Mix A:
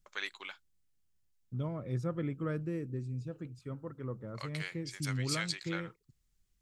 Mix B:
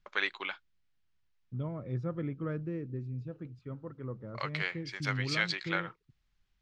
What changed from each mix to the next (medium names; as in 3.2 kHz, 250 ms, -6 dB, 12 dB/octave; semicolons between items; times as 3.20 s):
first voice +10.0 dB; master: add distance through air 230 m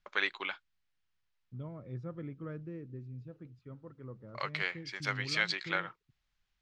second voice -6.5 dB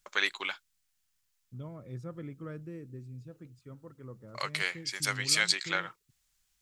master: remove distance through air 230 m